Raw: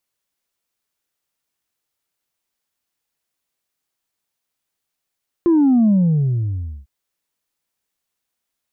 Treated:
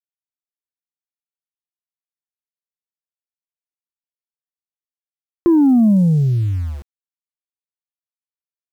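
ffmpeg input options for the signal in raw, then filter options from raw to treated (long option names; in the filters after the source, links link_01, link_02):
-f lavfi -i "aevalsrc='0.282*clip((1.4-t)/0.97,0,1)*tanh(1.12*sin(2*PI*350*1.4/log(65/350)*(exp(log(65/350)*t/1.4)-1)))/tanh(1.12)':duration=1.4:sample_rate=44100"
-filter_complex "[0:a]asplit=2[link_01][link_02];[link_02]acompressor=threshold=-27dB:ratio=4,volume=-0.5dB[link_03];[link_01][link_03]amix=inputs=2:normalize=0,aeval=exprs='val(0)*gte(abs(val(0)),0.02)':channel_layout=same"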